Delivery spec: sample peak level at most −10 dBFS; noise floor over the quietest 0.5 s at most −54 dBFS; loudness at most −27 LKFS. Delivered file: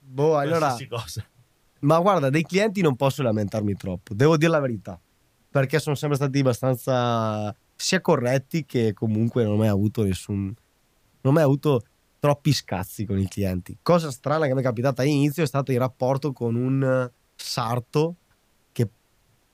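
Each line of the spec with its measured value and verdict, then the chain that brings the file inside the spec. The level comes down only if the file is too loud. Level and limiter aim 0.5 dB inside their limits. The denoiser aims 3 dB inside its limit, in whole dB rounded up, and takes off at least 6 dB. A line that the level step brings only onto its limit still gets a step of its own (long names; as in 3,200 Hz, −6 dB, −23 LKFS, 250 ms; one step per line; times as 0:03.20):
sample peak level −6.5 dBFS: out of spec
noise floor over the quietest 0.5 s −64 dBFS: in spec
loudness −23.5 LKFS: out of spec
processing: level −4 dB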